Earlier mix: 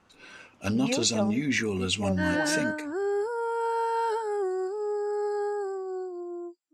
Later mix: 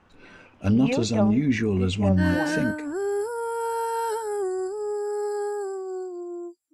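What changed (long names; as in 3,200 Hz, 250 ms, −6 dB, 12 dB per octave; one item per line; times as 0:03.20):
speech: add spectral tilt −3 dB per octave
first sound +4.0 dB
second sound: remove band-pass filter 320–4,900 Hz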